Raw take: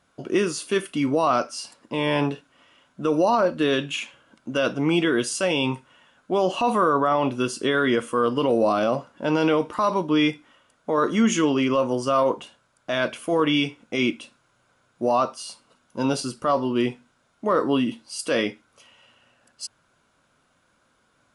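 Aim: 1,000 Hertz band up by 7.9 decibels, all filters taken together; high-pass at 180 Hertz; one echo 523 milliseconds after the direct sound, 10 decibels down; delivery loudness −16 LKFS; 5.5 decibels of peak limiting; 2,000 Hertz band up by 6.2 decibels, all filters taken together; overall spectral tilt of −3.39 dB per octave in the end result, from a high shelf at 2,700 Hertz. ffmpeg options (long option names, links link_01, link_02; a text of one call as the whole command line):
ffmpeg -i in.wav -af "highpass=180,equalizer=frequency=1000:width_type=o:gain=8,equalizer=frequency=2000:width_type=o:gain=4,highshelf=frequency=2700:gain=3.5,alimiter=limit=-8.5dB:level=0:latency=1,aecho=1:1:523:0.316,volume=5dB" out.wav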